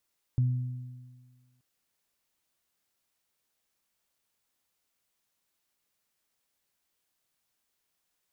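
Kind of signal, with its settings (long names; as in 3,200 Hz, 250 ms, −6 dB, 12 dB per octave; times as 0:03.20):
harmonic partials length 1.23 s, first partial 125 Hz, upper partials −18 dB, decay 1.53 s, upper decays 1.85 s, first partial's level −20.5 dB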